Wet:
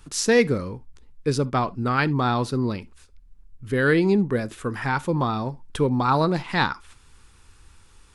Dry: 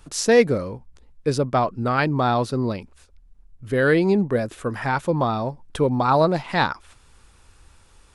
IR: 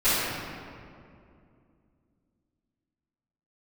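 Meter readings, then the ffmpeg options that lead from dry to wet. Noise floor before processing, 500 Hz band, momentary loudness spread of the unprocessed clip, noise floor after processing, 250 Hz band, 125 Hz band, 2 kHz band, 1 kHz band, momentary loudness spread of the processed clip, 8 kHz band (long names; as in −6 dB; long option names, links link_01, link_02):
−54 dBFS, −3.5 dB, 11 LU, −53 dBFS, 0.0 dB, 0.0 dB, 0.0 dB, −2.5 dB, 11 LU, 0.0 dB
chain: -filter_complex "[0:a]equalizer=frequency=630:width_type=o:width=0.62:gain=-8.5,asplit=2[link_01][link_02];[1:a]atrim=start_sample=2205,atrim=end_sample=3528[link_03];[link_02][link_03]afir=irnorm=-1:irlink=0,volume=-32dB[link_04];[link_01][link_04]amix=inputs=2:normalize=0"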